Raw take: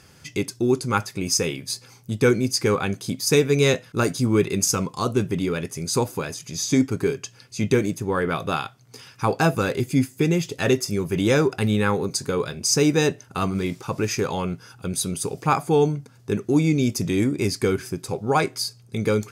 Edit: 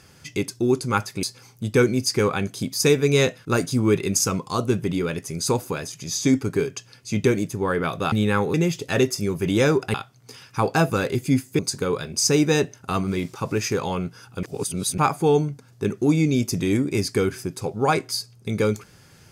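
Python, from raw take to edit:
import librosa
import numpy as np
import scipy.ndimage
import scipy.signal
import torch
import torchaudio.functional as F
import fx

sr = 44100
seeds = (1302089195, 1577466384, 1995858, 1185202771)

y = fx.edit(x, sr, fx.cut(start_s=1.23, length_s=0.47),
    fx.swap(start_s=8.59, length_s=1.65, other_s=11.64, other_length_s=0.42),
    fx.reverse_span(start_s=14.9, length_s=0.55), tone=tone)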